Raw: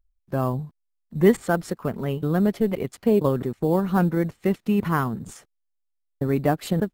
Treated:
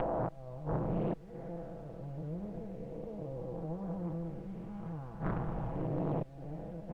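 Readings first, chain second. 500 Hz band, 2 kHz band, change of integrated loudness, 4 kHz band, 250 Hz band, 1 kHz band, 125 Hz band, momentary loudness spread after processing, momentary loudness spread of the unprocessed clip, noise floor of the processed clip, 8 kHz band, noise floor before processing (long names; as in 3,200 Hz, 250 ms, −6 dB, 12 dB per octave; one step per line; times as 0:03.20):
−15.5 dB, −21.5 dB, −16.0 dB, below −20 dB, −16.0 dB, −13.0 dB, −11.5 dB, 9 LU, 10 LU, −49 dBFS, below −30 dB, −75 dBFS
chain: spectrum smeared in time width 498 ms
hum removal 92.72 Hz, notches 34
on a send: echo with shifted repeats 152 ms, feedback 45%, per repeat −94 Hz, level −12.5 dB
on the sum: upward compression, threshold −39 dBFS
flat-topped bell 650 Hz +10 dB 1.1 octaves
gate with flip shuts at −20 dBFS, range −29 dB
elliptic low-pass filter 2,700 Hz
low-shelf EQ 350 Hz +10 dB
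downward compressor 6 to 1, threshold −38 dBFS, peak gain reduction 15 dB
background noise brown −61 dBFS
comb filter 6.1 ms, depth 69%
highs frequency-modulated by the lows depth 0.85 ms
level +5 dB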